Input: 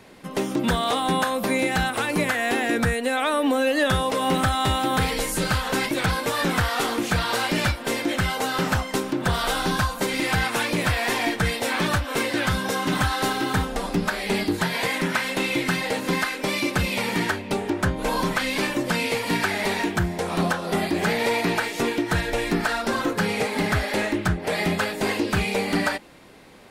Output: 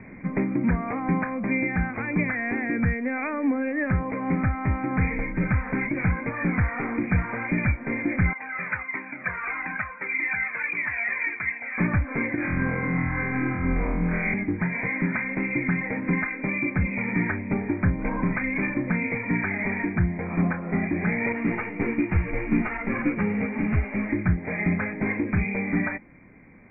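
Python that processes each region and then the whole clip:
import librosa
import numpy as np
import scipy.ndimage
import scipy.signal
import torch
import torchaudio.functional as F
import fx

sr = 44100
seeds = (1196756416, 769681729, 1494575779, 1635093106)

y = fx.chain(x, sr, fx.bandpass_q(hz=2400.0, q=0.95),
    fx.comb_cascade(direction='falling', hz=1.6), at=(8.33, 11.78))
y = fx.chain(y, sr, fx.over_compress(threshold_db=-28.0, ratio=-1.0),
    fx.room_flutter(wall_m=4.0, rt60_s=1.2), at=(12.35, 14.34))
y = fx.chain(y, sr, fx.sample_sort(block=16),
    fx.ensemble(), at=(21.32, 24.09))
y = scipy.signal.sosfilt(scipy.signal.cheby1(10, 1.0, 2400.0, 'lowpass', fs=sr, output='sos'), y)
y = fx.band_shelf(y, sr, hz=750.0, db=-11.0, octaves=2.5)
y = fx.rider(y, sr, range_db=10, speed_s=0.5)
y = F.gain(torch.from_numpy(y), 3.5).numpy()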